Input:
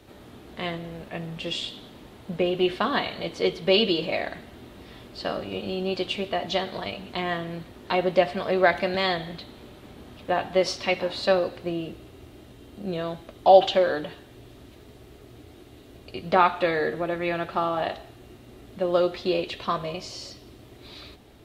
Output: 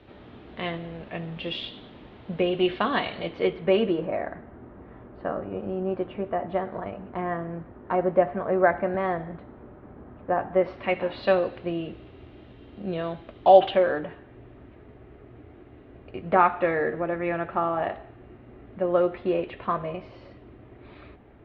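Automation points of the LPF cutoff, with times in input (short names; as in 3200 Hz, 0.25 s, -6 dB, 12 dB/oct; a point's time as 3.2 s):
LPF 24 dB/oct
3.17 s 3400 Hz
4.1 s 1600 Hz
10.47 s 1600 Hz
11.26 s 3200 Hz
13.53 s 3200 Hz
14.01 s 2200 Hz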